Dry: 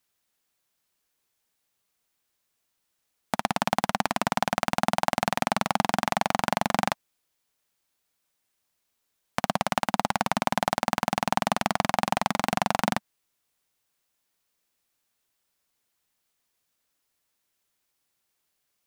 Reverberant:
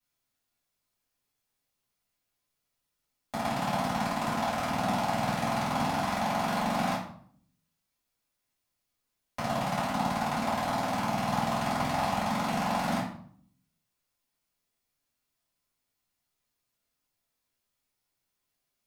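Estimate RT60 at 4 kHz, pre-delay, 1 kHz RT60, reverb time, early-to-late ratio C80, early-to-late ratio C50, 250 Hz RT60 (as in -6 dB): 0.45 s, 3 ms, 0.55 s, 0.60 s, 9.0 dB, 4.0 dB, 0.85 s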